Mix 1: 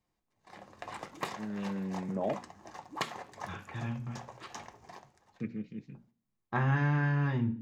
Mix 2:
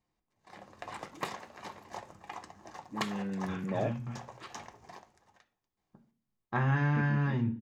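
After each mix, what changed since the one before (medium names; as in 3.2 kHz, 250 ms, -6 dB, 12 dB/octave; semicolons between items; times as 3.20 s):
first voice: entry +1.55 s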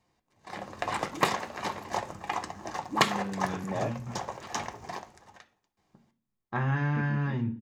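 background +11.5 dB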